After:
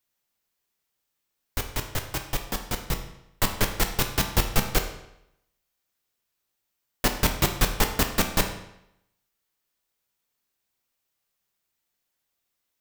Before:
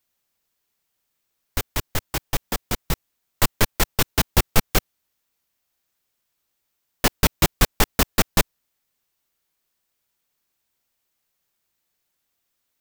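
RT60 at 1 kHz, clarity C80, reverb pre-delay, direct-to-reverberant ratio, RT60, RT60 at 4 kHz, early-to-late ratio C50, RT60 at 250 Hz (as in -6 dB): 0.80 s, 11.0 dB, 10 ms, 5.0 dB, 0.80 s, 0.70 s, 8.5 dB, 0.80 s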